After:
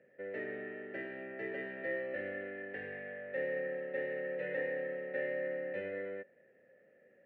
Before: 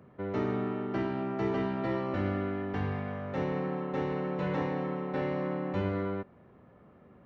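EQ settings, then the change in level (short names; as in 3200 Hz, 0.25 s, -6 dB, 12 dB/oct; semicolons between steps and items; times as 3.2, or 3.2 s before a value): vowel filter e; bell 180 Hz +4 dB 1.7 oct; bell 1900 Hz +11.5 dB 0.73 oct; +1.0 dB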